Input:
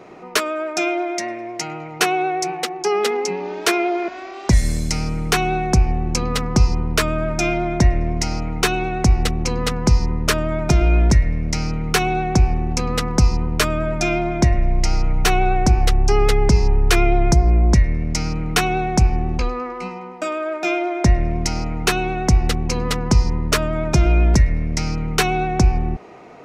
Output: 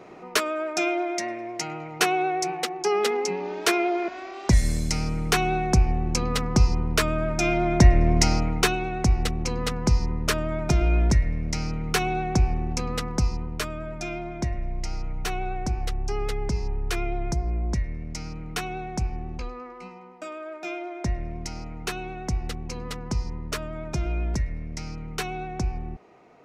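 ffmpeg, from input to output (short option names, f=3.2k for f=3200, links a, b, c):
-af "volume=2.5dB,afade=t=in:st=7.4:d=0.83:silence=0.473151,afade=t=out:st=8.23:d=0.55:silence=0.375837,afade=t=out:st=12.65:d=1.08:silence=0.473151"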